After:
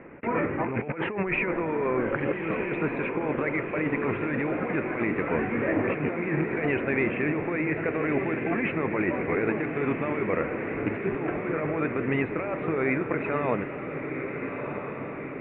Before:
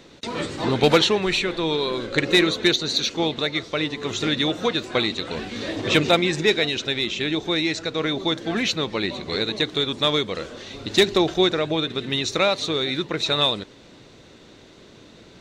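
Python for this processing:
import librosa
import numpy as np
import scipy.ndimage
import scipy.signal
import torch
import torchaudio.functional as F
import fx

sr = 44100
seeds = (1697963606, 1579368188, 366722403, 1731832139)

p1 = fx.rattle_buzz(x, sr, strikes_db=-25.0, level_db=-20.0)
p2 = scipy.signal.sosfilt(scipy.signal.butter(12, 2400.0, 'lowpass', fs=sr, output='sos'), p1)
p3 = fx.low_shelf(p2, sr, hz=100.0, db=-7.0)
p4 = fx.over_compress(p3, sr, threshold_db=-28.0, ratio=-1.0)
y = p4 + fx.echo_diffused(p4, sr, ms=1354, feedback_pct=61, wet_db=-6.5, dry=0)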